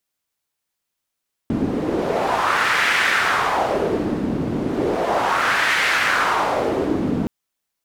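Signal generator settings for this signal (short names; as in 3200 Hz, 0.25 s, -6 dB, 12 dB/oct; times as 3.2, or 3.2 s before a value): wind-like swept noise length 5.77 s, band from 240 Hz, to 1900 Hz, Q 2.2, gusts 2, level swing 4 dB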